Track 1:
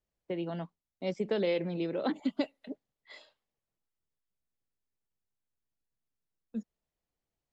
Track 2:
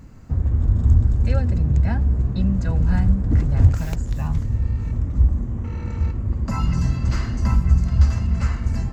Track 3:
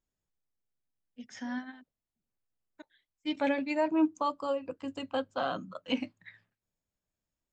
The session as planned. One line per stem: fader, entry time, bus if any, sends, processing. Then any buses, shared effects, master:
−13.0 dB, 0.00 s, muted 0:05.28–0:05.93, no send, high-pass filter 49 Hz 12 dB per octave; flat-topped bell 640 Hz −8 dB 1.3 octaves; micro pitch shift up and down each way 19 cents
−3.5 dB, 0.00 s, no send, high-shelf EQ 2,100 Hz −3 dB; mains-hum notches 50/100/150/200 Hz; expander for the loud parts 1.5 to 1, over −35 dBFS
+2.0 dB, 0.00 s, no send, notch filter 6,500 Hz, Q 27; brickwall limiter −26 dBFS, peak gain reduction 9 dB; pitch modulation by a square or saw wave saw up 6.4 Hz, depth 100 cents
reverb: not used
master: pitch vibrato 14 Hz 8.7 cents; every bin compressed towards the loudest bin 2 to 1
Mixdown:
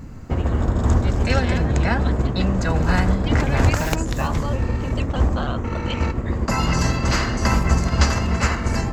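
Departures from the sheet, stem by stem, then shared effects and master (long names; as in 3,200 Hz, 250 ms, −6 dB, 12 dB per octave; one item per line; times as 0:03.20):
stem 1: missing micro pitch shift up and down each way 19 cents
stem 2 −3.5 dB → +3.0 dB
stem 3 +2.0 dB → −9.0 dB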